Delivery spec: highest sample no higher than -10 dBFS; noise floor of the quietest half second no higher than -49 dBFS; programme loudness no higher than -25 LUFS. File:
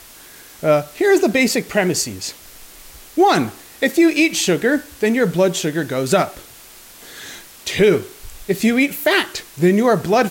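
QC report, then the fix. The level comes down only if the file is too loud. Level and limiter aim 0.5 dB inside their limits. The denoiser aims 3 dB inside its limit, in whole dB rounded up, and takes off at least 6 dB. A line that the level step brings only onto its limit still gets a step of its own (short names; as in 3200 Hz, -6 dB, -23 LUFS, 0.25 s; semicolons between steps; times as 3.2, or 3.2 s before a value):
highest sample -5.0 dBFS: fail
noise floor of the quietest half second -42 dBFS: fail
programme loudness -17.5 LUFS: fail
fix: gain -8 dB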